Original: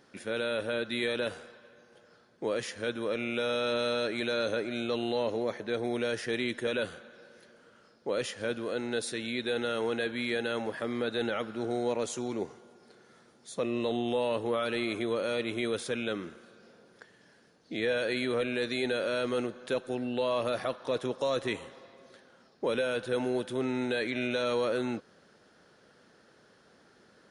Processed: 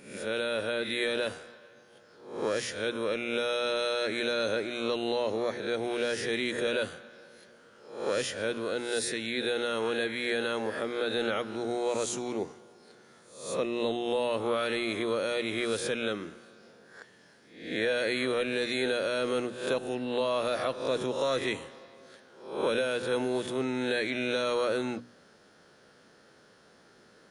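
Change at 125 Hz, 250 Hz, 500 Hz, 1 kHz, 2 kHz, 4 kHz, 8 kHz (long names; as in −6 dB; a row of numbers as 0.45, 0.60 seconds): −1.5, −0.5, +1.0, +2.0, +2.0, +3.0, +5.0 decibels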